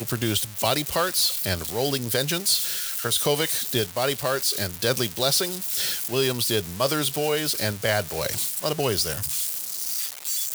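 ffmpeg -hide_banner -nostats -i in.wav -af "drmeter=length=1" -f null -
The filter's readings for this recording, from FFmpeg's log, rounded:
Channel 1: DR: 14.1
Overall DR: 14.1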